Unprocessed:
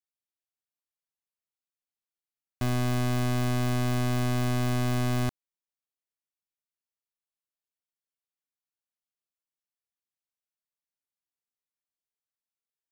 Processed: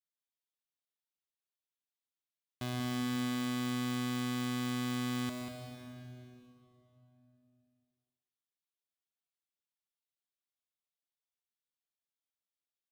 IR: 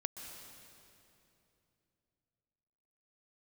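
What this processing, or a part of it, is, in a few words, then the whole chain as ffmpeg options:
PA in a hall: -filter_complex "[0:a]highpass=frequency=130:poles=1,equalizer=frequency=3500:width_type=o:width=0.54:gain=7.5,aecho=1:1:190:0.398[link_01];[1:a]atrim=start_sample=2205[link_02];[link_01][link_02]afir=irnorm=-1:irlink=0,volume=-6.5dB"

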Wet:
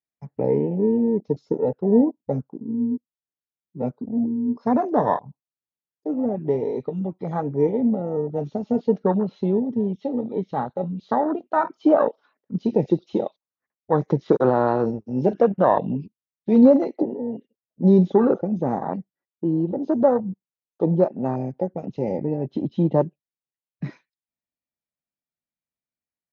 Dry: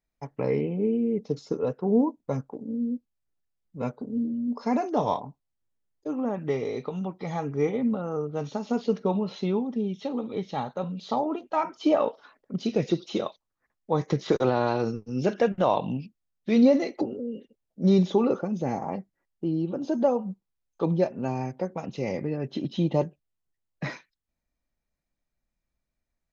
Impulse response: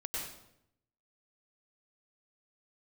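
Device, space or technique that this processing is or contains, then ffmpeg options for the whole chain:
over-cleaned archive recording: -af "highpass=120,lowpass=5700,afwtdn=0.0398,volume=5.5dB"

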